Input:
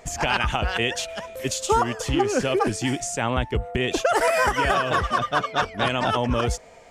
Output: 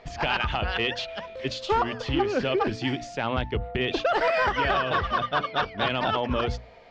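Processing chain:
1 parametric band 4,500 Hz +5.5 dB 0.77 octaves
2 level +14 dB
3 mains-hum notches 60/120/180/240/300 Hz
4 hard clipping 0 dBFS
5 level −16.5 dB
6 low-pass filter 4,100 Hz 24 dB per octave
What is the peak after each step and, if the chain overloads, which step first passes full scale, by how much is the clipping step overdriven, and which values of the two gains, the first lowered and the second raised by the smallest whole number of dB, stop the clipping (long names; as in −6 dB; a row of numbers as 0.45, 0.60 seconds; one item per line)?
−6.0, +8.0, +8.0, 0.0, −16.5, −15.0 dBFS
step 2, 8.0 dB
step 2 +6 dB, step 5 −8.5 dB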